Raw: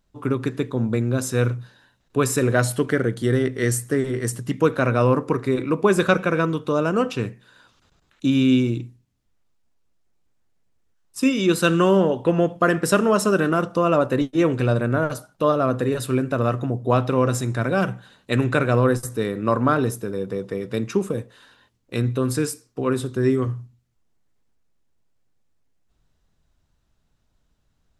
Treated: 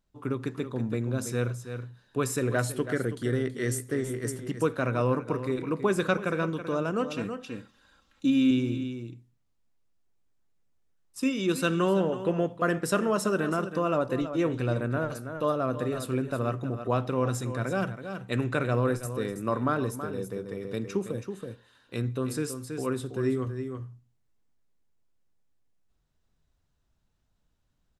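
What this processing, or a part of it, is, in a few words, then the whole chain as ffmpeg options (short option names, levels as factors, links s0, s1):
ducked delay: -filter_complex "[0:a]asettb=1/sr,asplit=3[s0][s1][s2];[s0]atrim=end=7.104[s3];[s1]atrim=start=7.1:end=8.51,asetpts=PTS-STARTPTS,afade=t=in:d=0.004:c=qsin,afade=t=out:st=1.406:d=0.004:c=qsin,aecho=1:1:3.7:0.64,atrim=end_sample=62181[s4];[s2]atrim=start=8.506[s5];[s3][s4]acrossfade=d=0.004:c1=hsin:c2=qsin[s6];[s6][s5]acrossfade=d=0.004:c1=qsin:c2=hsin,asplit=3[s7][s8][s9];[s8]adelay=326,volume=0.708[s10];[s9]apad=whole_len=1249001[s11];[s10][s11]sidechaincompress=threshold=0.0708:ratio=6:attack=11:release=886[s12];[s7][s12]amix=inputs=2:normalize=0,volume=0.398"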